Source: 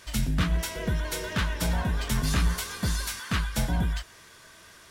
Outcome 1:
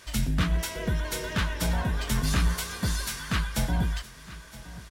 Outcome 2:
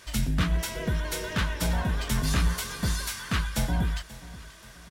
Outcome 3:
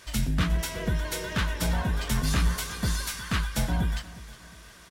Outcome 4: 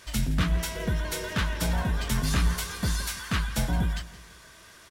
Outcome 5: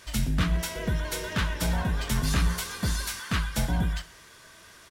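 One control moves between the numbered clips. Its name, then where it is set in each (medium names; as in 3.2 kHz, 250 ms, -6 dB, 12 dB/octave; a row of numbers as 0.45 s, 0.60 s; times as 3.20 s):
feedback delay, time: 968 ms, 533 ms, 359 ms, 167 ms, 63 ms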